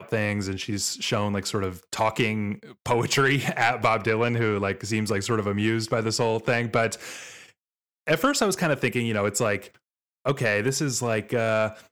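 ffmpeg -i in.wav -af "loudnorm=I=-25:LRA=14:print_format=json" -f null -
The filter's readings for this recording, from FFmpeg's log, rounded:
"input_i" : "-25.0",
"input_tp" : "-11.7",
"input_lra" : "2.6",
"input_thresh" : "-35.3",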